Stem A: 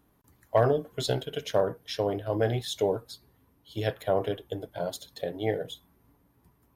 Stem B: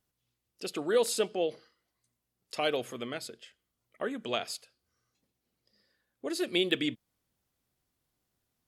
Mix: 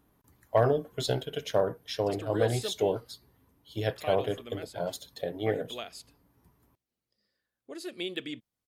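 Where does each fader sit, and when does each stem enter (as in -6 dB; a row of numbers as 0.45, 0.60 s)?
-1.0, -7.5 dB; 0.00, 1.45 s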